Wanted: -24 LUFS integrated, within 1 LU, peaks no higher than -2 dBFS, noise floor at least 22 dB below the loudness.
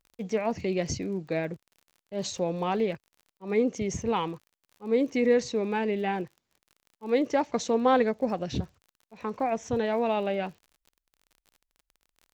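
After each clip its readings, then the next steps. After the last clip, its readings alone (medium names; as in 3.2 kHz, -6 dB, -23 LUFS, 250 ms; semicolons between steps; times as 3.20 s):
tick rate 40 per s; loudness -28.5 LUFS; peak level -11.5 dBFS; loudness target -24.0 LUFS
-> de-click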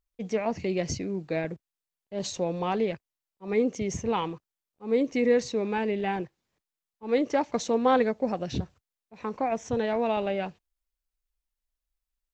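tick rate 0.081 per s; loudness -28.5 LUFS; peak level -11.5 dBFS; loudness target -24.0 LUFS
-> trim +4.5 dB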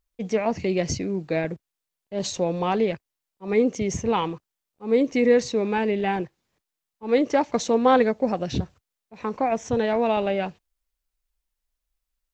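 loudness -24.0 LUFS; peak level -7.0 dBFS; noise floor -85 dBFS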